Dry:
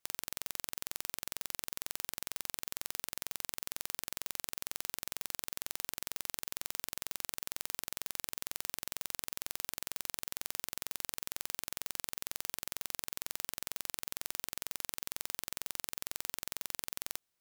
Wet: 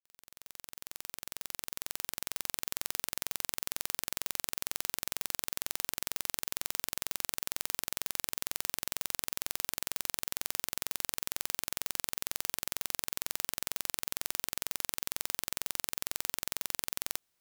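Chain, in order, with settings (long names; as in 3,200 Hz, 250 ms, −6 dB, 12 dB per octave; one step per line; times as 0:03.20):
fade in at the beginning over 2.69 s
level +4.5 dB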